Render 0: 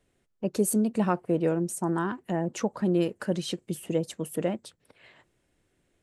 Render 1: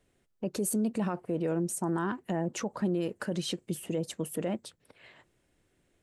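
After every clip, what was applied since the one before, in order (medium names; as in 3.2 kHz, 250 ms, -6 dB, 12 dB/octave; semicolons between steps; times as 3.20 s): peak limiter -22 dBFS, peak gain reduction 9.5 dB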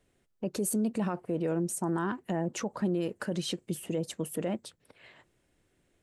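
no audible change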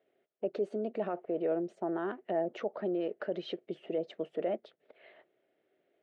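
cabinet simulation 360–3100 Hz, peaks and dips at 400 Hz +7 dB, 640 Hz +10 dB, 1 kHz -9 dB, 1.6 kHz -3 dB, 2.6 kHz -4 dB; trim -2 dB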